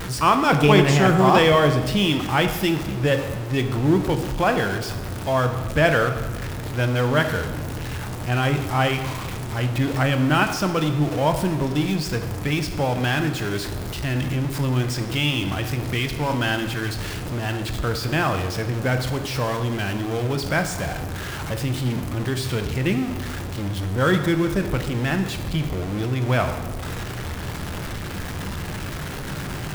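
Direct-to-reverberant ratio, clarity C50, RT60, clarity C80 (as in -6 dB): 6.0 dB, 8.5 dB, 1.4 s, 10.5 dB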